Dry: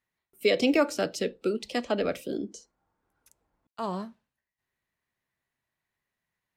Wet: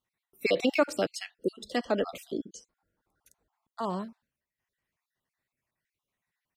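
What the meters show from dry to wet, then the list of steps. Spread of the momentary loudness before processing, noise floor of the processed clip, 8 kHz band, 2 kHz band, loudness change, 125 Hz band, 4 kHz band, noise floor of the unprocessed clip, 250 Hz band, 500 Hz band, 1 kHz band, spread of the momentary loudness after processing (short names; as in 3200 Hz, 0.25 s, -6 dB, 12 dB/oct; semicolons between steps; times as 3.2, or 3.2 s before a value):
13 LU, under -85 dBFS, -2.5 dB, -1.5 dB, -2.5 dB, -2.0 dB, -3.0 dB, under -85 dBFS, -3.5 dB, -2.5 dB, -0.5 dB, 17 LU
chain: random spectral dropouts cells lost 37%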